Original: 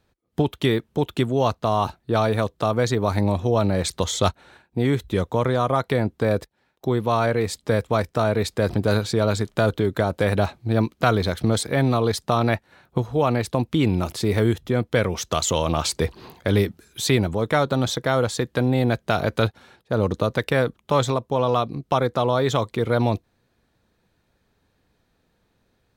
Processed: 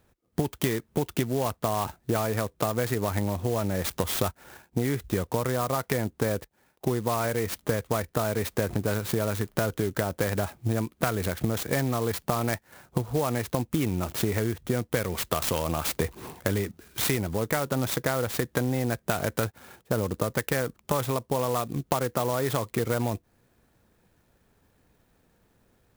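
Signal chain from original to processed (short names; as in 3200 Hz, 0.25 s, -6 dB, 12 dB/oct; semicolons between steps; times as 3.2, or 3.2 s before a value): dynamic EQ 1900 Hz, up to +5 dB, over -40 dBFS, Q 2; compressor 10:1, threshold -25 dBFS, peak gain reduction 13.5 dB; clock jitter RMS 0.058 ms; gain +2.5 dB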